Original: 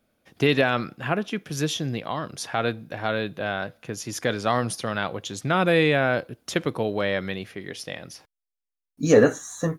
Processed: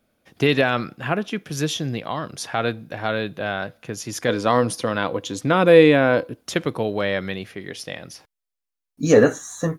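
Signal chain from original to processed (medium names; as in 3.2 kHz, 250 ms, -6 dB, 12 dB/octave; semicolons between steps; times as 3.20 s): 4.28–6.41 s: small resonant body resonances 290/490/1000 Hz, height 9 dB; trim +2 dB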